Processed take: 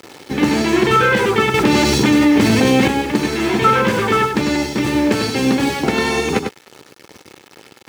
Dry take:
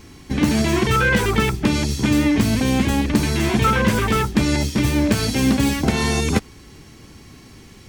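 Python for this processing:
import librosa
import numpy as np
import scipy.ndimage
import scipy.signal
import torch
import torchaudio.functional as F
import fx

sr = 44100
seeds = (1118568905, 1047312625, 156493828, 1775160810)

y = fx.rider(x, sr, range_db=4, speed_s=2.0)
y = fx.quant_dither(y, sr, seeds[0], bits=6, dither='none')
y = scipy.signal.sosfilt(scipy.signal.butter(2, 190.0, 'highpass', fs=sr, output='sos'), y)
y = fx.high_shelf(y, sr, hz=6100.0, db=-12.0)
y = y + 0.34 * np.pad(y, (int(2.3 * sr / 1000.0), 0))[:len(y)]
y = y + 10.0 ** (-6.5 / 20.0) * np.pad(y, (int(99 * sr / 1000.0), 0))[:len(y)]
y = fx.env_flatten(y, sr, amount_pct=70, at=(1.54, 2.88))
y = y * librosa.db_to_amplitude(3.5)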